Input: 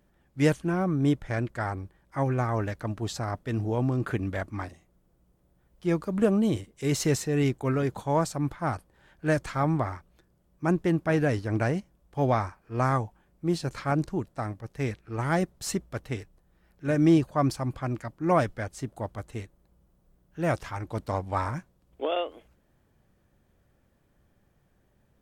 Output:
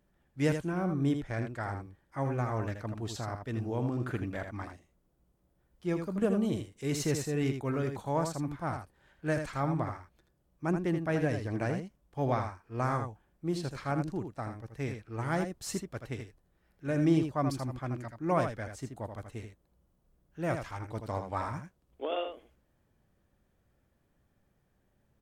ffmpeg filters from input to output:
-filter_complex "[0:a]asettb=1/sr,asplit=3[a][b][c];[a]atrim=end=11.204[d];[b]atrim=start=11.2:end=11.65,asetpts=PTS-STARTPTS,afade=t=in:d=0.004:c=qsin,afade=t=out:st=0.446:d=0.004:c=qsin,bandreject=f=1.4k:w=9.8[e];[c]atrim=start=11.646[f];[d][e]acrossfade=d=0.004:c1=hsin:c2=qsin[g];[g][f]acrossfade=d=0.004:c1=qsin:c2=hsin,aecho=1:1:80:0.447,volume=-6dB"

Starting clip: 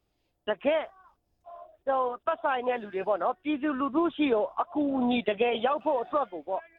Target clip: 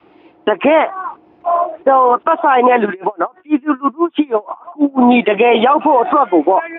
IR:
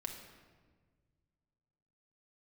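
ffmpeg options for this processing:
-filter_complex "[0:a]adynamicequalizer=threshold=0.01:dfrequency=390:dqfactor=1.4:tfrequency=390:tqfactor=1.4:attack=5:release=100:ratio=0.375:range=2:mode=cutabove:tftype=bell,acompressor=threshold=-34dB:ratio=6,highpass=270,equalizer=f=330:t=q:w=4:g=8,equalizer=f=590:t=q:w=4:g=-5,equalizer=f=940:t=q:w=4:g=4,equalizer=f=1.7k:t=q:w=4:g=-4,lowpass=f=2.5k:w=0.5412,lowpass=f=2.5k:w=1.3066,alimiter=level_in=34dB:limit=-1dB:release=50:level=0:latency=1,asplit=3[a][b][c];[a]afade=t=out:st=2.85:d=0.02[d];[b]aeval=exprs='val(0)*pow(10,-33*(0.5-0.5*cos(2*PI*6.2*n/s))/20)':c=same,afade=t=in:st=2.85:d=0.02,afade=t=out:st=4.98:d=0.02[e];[c]afade=t=in:st=4.98:d=0.02[f];[d][e][f]amix=inputs=3:normalize=0,volume=-1.5dB"

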